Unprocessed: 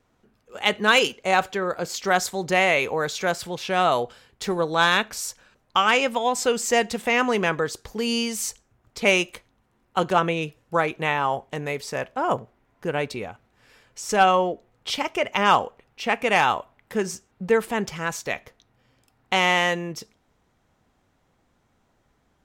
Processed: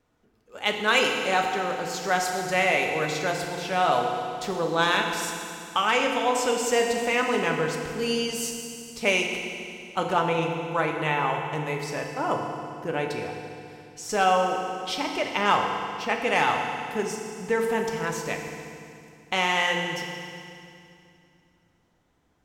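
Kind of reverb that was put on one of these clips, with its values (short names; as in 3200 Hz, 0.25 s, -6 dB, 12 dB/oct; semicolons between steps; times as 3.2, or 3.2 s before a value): FDN reverb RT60 2.5 s, low-frequency decay 1.35×, high-frequency decay 1×, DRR 1.5 dB; gain -4.5 dB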